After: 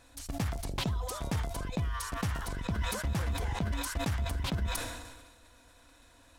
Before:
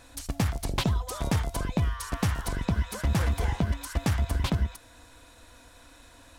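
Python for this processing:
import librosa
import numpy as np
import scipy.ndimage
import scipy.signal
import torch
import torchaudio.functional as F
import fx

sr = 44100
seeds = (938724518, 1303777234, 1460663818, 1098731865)

y = fx.sustainer(x, sr, db_per_s=42.0)
y = F.gain(torch.from_numpy(y), -7.0).numpy()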